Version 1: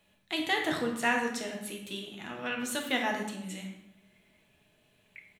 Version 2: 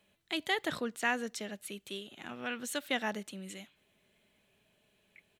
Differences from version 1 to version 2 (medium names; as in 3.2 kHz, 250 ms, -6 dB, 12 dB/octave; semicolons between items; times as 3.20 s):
background -8.5 dB; reverb: off